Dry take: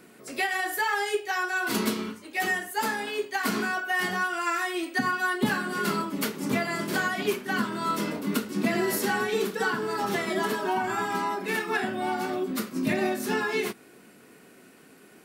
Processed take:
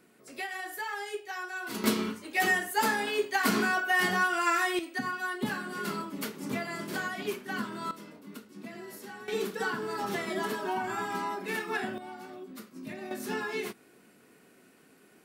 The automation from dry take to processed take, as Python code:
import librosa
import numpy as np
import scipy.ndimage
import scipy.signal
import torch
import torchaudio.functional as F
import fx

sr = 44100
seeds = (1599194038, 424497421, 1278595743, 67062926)

y = fx.gain(x, sr, db=fx.steps((0.0, -9.5), (1.84, 1.0), (4.79, -7.0), (7.91, -18.0), (9.28, -5.0), (11.98, -15.0), (13.11, -6.5)))